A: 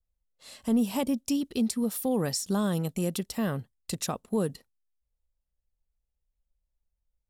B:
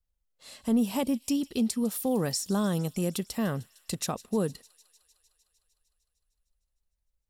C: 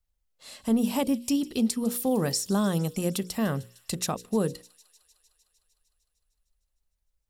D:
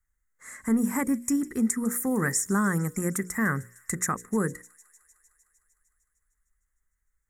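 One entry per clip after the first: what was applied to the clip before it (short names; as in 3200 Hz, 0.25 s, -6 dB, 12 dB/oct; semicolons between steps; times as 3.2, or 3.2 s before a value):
thin delay 0.152 s, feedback 76%, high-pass 3100 Hz, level -18 dB
notches 60/120/180/240/300/360/420/480/540 Hz; gain +2.5 dB
EQ curve 390 Hz 0 dB, 650 Hz -10 dB, 1300 Hz +9 dB, 2000 Hz +13 dB, 2800 Hz -23 dB, 4500 Hz -21 dB, 6800 Hz +6 dB, 14000 Hz 0 dB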